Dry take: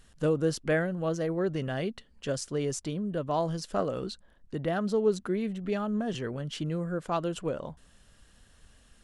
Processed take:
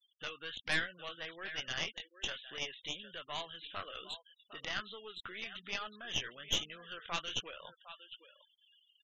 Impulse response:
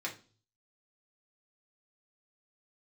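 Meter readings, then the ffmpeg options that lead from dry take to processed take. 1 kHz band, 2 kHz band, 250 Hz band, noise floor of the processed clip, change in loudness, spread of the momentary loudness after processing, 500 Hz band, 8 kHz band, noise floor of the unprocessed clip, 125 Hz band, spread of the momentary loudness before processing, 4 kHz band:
-9.5 dB, +0.5 dB, -22.5 dB, -76 dBFS, -8.5 dB, 14 LU, -20.0 dB, -4.0 dB, -61 dBFS, -21.0 dB, 8 LU, +6.0 dB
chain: -filter_complex "[0:a]acrossover=split=1100[a][b];[a]acompressor=threshold=-37dB:ratio=6[c];[b]flanger=delay=15.5:depth=7.7:speed=1.2[d];[c][d]amix=inputs=2:normalize=0,aderivative,aresample=8000,aresample=44100,highshelf=f=2k:g=10.5,asplit=2[e][f];[f]aecho=0:1:757:0.237[g];[e][g]amix=inputs=2:normalize=0,aeval=exprs='0.0282*(cos(1*acos(clip(val(0)/0.0282,-1,1)))-cos(1*PI/2))+0.00282*(cos(2*acos(clip(val(0)/0.0282,-1,1)))-cos(2*PI/2))+0.00891*(cos(4*acos(clip(val(0)/0.0282,-1,1)))-cos(4*PI/2))':c=same,afftfilt=real='re*gte(hypot(re,im),0.000891)':imag='im*gte(hypot(re,im),0.000891)':win_size=1024:overlap=0.75,volume=11dB"

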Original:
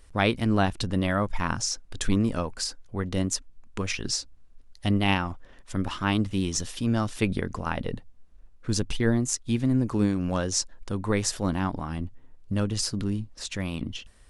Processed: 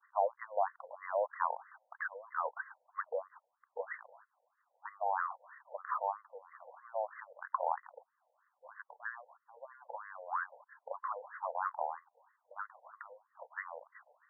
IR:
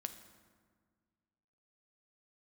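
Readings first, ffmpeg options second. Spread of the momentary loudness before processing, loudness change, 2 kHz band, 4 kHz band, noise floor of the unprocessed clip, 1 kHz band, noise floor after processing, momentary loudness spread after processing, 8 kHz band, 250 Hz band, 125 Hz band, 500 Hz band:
10 LU, -12.0 dB, -10.0 dB, under -40 dB, -51 dBFS, -2.5 dB, -82 dBFS, 19 LU, under -40 dB, under -40 dB, under -40 dB, -8.5 dB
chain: -af "acompressor=threshold=-30dB:ratio=6,agate=range=-33dB:threshold=-47dB:ratio=3:detection=peak,asoftclip=type=tanh:threshold=-17dB,asuperstop=centerf=3700:order=4:qfactor=0.73,afftfilt=real='re*between(b*sr/1024,650*pow(1500/650,0.5+0.5*sin(2*PI*3.1*pts/sr))/1.41,650*pow(1500/650,0.5+0.5*sin(2*PI*3.1*pts/sr))*1.41)':imag='im*between(b*sr/1024,650*pow(1500/650,0.5+0.5*sin(2*PI*3.1*pts/sr))/1.41,650*pow(1500/650,0.5+0.5*sin(2*PI*3.1*pts/sr))*1.41)':win_size=1024:overlap=0.75,volume=8.5dB"

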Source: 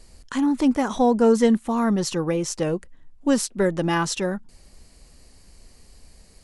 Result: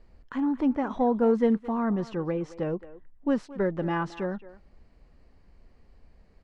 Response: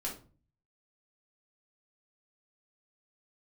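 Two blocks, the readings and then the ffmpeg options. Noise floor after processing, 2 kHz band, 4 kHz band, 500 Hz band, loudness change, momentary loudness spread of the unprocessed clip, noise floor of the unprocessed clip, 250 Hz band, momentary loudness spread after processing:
-59 dBFS, -7.5 dB, -17.5 dB, -5.5 dB, -5.5 dB, 11 LU, -53 dBFS, -5.5 dB, 11 LU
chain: -filter_complex "[0:a]lowpass=1.9k,asplit=2[a][b];[b]adelay=220,highpass=300,lowpass=3.4k,asoftclip=type=hard:threshold=-15dB,volume=-16dB[c];[a][c]amix=inputs=2:normalize=0,volume=-5.5dB"

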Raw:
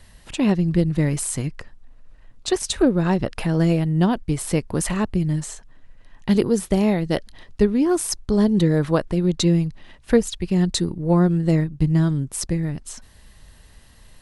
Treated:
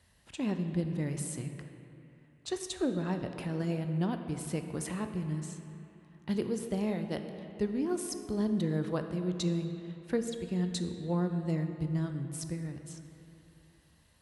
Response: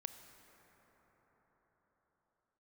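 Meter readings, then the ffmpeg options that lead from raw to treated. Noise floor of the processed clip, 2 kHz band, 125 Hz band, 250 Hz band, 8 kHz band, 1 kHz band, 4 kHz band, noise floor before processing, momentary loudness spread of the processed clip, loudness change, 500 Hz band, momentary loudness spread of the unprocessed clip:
-63 dBFS, -13.0 dB, -13.0 dB, -13.0 dB, -13.5 dB, -13.0 dB, -13.5 dB, -50 dBFS, 14 LU, -13.0 dB, -13.0 dB, 9 LU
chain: -filter_complex "[0:a]highpass=f=57:w=0.5412,highpass=f=57:w=1.3066[a];[1:a]atrim=start_sample=2205,asetrate=79380,aresample=44100[b];[a][b]afir=irnorm=-1:irlink=0,volume=-4.5dB"

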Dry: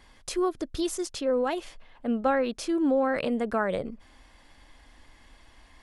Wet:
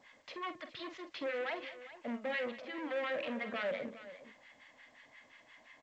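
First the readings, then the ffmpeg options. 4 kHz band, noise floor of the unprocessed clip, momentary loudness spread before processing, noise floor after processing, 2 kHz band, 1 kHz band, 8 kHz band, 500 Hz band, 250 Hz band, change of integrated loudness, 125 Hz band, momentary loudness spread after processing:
-6.5 dB, -57 dBFS, 9 LU, -65 dBFS, -3.5 dB, -12.5 dB, under -25 dB, -11.5 dB, -16.0 dB, -11.5 dB, under -15 dB, 21 LU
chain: -filter_complex "[0:a]lowshelf=f=250:g=-11,aeval=exprs='0.0708*(abs(mod(val(0)/0.0708+3,4)-2)-1)':c=same,acrossover=split=940[a][b];[a]aeval=exprs='val(0)*(1-1/2+1/2*cos(2*PI*5.7*n/s))':c=same[c];[b]aeval=exprs='val(0)*(1-1/2-1/2*cos(2*PI*5.7*n/s))':c=same[d];[c][d]amix=inputs=2:normalize=0,asoftclip=type=hard:threshold=-37.5dB,highpass=f=120:w=0.5412,highpass=f=120:w=1.3066,equalizer=f=170:t=q:w=4:g=-6,equalizer=f=370:t=q:w=4:g=-9,equalizer=f=600:t=q:w=4:g=5,equalizer=f=850:t=q:w=4:g=-3,equalizer=f=1.4k:t=q:w=4:g=-3,equalizer=f=2k:t=q:w=4:g=7,lowpass=f=3.4k:w=0.5412,lowpass=f=3.4k:w=1.3066,asplit=2[e][f];[f]aecho=0:1:47|192|411:0.299|0.141|0.178[g];[e][g]amix=inputs=2:normalize=0,volume=2dB" -ar 16000 -c:a pcm_alaw

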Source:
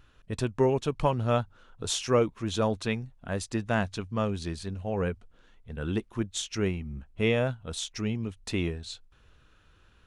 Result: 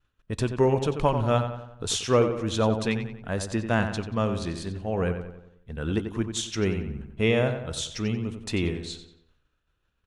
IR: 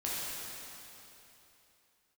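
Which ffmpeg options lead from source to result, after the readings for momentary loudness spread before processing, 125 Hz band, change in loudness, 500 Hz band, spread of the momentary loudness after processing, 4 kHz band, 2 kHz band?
12 LU, +3.5 dB, +3.0 dB, +3.0 dB, 12 LU, +3.0 dB, +3.0 dB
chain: -filter_complex "[0:a]agate=range=-33dB:threshold=-47dB:ratio=3:detection=peak,asplit=2[a][b];[b]adelay=91,lowpass=f=3.3k:p=1,volume=-8dB,asplit=2[c][d];[d]adelay=91,lowpass=f=3.3k:p=1,volume=0.5,asplit=2[e][f];[f]adelay=91,lowpass=f=3.3k:p=1,volume=0.5,asplit=2[g][h];[h]adelay=91,lowpass=f=3.3k:p=1,volume=0.5,asplit=2[i][j];[j]adelay=91,lowpass=f=3.3k:p=1,volume=0.5,asplit=2[k][l];[l]adelay=91,lowpass=f=3.3k:p=1,volume=0.5[m];[a][c][e][g][i][k][m]amix=inputs=7:normalize=0,asplit=2[n][o];[1:a]atrim=start_sample=2205,atrim=end_sample=3528[p];[o][p]afir=irnorm=-1:irlink=0,volume=-24dB[q];[n][q]amix=inputs=2:normalize=0,volume=2dB"

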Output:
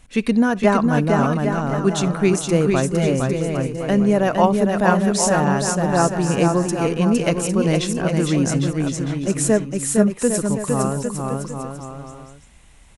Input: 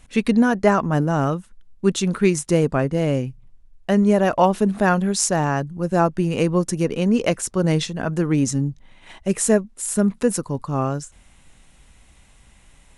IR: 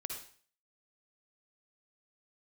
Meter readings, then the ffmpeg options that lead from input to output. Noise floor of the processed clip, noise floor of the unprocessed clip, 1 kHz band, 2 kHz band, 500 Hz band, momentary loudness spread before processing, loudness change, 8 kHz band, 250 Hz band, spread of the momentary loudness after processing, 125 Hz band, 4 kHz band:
-46 dBFS, -53 dBFS, +2.0 dB, +2.0 dB, +2.0 dB, 8 LU, +1.5 dB, +2.0 dB, +2.0 dB, 7 LU, +2.0 dB, +2.0 dB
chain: -filter_complex "[0:a]aecho=1:1:460|805|1064|1258|1403:0.631|0.398|0.251|0.158|0.1,asplit=2[a][b];[1:a]atrim=start_sample=2205,atrim=end_sample=3969[c];[b][c]afir=irnorm=-1:irlink=0,volume=-17.5dB[d];[a][d]amix=inputs=2:normalize=0,volume=-1dB"

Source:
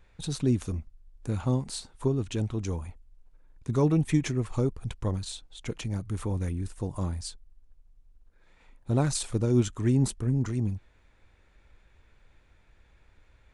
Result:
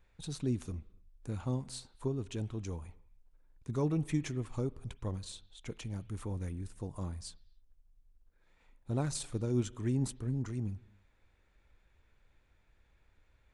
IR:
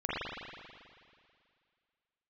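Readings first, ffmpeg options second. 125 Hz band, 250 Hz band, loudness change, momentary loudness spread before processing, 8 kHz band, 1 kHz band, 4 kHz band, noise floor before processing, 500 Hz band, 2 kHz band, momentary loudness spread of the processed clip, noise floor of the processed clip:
-8.0 dB, -8.0 dB, -8.0 dB, 13 LU, -8.0 dB, -8.0 dB, -8.0 dB, -62 dBFS, -8.0 dB, -8.0 dB, 13 LU, -70 dBFS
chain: -filter_complex "[0:a]asplit=2[a][b];[b]aemphasis=mode=production:type=75kf[c];[1:a]atrim=start_sample=2205,afade=t=out:st=0.35:d=0.01,atrim=end_sample=15876[d];[c][d]afir=irnorm=-1:irlink=0,volume=-29dB[e];[a][e]amix=inputs=2:normalize=0,volume=-8.5dB"

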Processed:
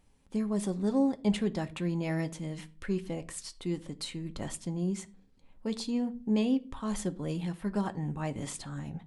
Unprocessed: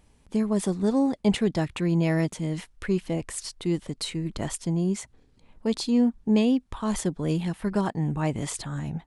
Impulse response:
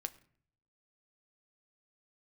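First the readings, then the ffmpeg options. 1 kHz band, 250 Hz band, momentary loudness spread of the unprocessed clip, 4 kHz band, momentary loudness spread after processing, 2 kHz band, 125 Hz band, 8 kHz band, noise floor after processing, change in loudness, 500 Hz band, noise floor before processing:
-6.0 dB, -6.0 dB, 9 LU, -6.5 dB, 11 LU, -7.0 dB, -7.5 dB, -7.0 dB, -60 dBFS, -6.5 dB, -7.0 dB, -61 dBFS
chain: -filter_complex "[1:a]atrim=start_sample=2205,asetrate=74970,aresample=44100[a];[0:a][a]afir=irnorm=-1:irlink=0"

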